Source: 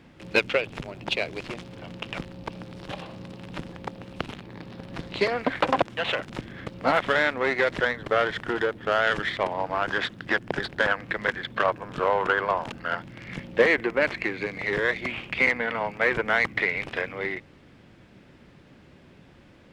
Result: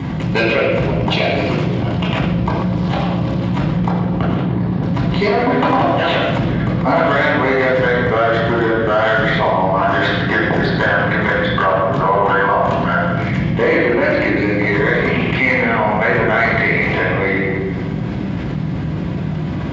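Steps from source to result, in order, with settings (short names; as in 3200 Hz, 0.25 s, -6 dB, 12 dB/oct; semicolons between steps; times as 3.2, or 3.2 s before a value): 3.99–4.83 high shelf 2200 Hz -9.5 dB; reverb RT60 1.1 s, pre-delay 3 ms, DRR -5.5 dB; fast leveller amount 70%; gain -11.5 dB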